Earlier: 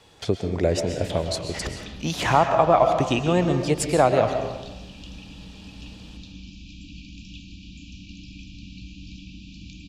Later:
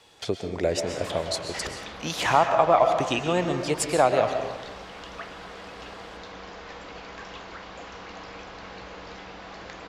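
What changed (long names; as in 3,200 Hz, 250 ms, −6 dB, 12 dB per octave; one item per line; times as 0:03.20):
background: remove linear-phase brick-wall band-stop 320–2,300 Hz
master: add low-shelf EQ 280 Hz −10.5 dB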